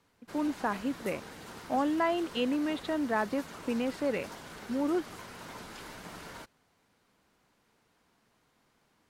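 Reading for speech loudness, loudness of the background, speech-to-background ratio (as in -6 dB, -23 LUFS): -32.5 LUFS, -46.0 LUFS, 13.5 dB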